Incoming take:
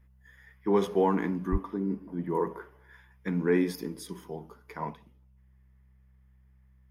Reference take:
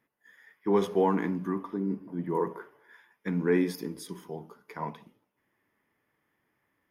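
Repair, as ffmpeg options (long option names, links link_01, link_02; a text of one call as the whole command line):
ffmpeg -i in.wav -filter_complex "[0:a]bandreject=frequency=64.5:width_type=h:width=4,bandreject=frequency=129:width_type=h:width=4,bandreject=frequency=193.5:width_type=h:width=4,asplit=3[link_01][link_02][link_03];[link_01]afade=type=out:start_time=1.51:duration=0.02[link_04];[link_02]highpass=frequency=140:width=0.5412,highpass=frequency=140:width=1.3066,afade=type=in:start_time=1.51:duration=0.02,afade=type=out:start_time=1.63:duration=0.02[link_05];[link_03]afade=type=in:start_time=1.63:duration=0.02[link_06];[link_04][link_05][link_06]amix=inputs=3:normalize=0,asetnsamples=nb_out_samples=441:pad=0,asendcmd='4.94 volume volume 5dB',volume=0dB" out.wav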